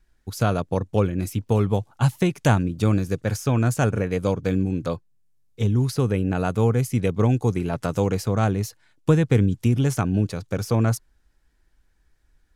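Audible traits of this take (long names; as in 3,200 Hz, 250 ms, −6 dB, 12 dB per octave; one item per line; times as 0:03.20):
background noise floor −64 dBFS
spectral slope −7.0 dB per octave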